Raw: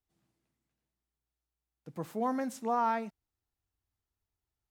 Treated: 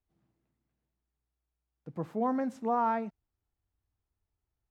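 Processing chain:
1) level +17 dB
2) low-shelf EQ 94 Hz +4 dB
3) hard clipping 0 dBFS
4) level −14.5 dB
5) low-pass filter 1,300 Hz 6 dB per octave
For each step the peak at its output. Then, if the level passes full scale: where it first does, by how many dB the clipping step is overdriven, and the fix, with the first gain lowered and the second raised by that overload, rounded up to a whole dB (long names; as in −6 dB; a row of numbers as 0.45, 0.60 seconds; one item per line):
−2.5, −2.5, −2.5, −17.0, −18.5 dBFS
no step passes full scale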